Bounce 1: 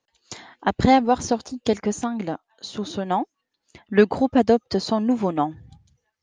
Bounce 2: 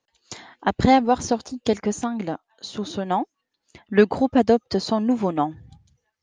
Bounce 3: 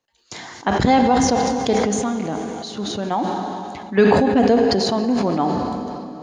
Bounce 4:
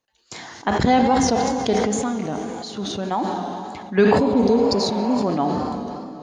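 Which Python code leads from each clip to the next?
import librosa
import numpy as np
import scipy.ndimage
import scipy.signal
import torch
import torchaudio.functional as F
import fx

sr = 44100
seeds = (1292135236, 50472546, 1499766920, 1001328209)

y1 = x
y2 = fx.rev_plate(y1, sr, seeds[0], rt60_s=3.6, hf_ratio=0.9, predelay_ms=0, drr_db=7.5)
y2 = fx.sustainer(y2, sr, db_per_s=22.0)
y3 = fx.spec_repair(y2, sr, seeds[1], start_s=4.21, length_s=0.99, low_hz=570.0, high_hz=3400.0, source='after')
y3 = fx.wow_flutter(y3, sr, seeds[2], rate_hz=2.1, depth_cents=62.0)
y3 = y3 * 10.0 ** (-1.5 / 20.0)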